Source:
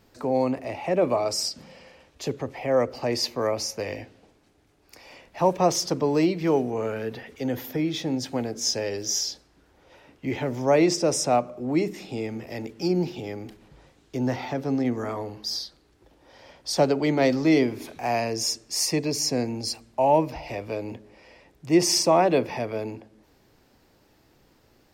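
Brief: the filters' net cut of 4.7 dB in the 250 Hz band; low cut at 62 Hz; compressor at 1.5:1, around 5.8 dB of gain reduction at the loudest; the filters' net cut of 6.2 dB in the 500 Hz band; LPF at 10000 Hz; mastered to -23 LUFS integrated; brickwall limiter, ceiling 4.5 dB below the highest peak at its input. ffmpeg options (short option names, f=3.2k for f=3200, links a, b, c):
-af "highpass=62,lowpass=10k,equalizer=f=250:t=o:g=-3.5,equalizer=f=500:t=o:g=-7,acompressor=threshold=-35dB:ratio=1.5,volume=11dB,alimiter=limit=-11dB:level=0:latency=1"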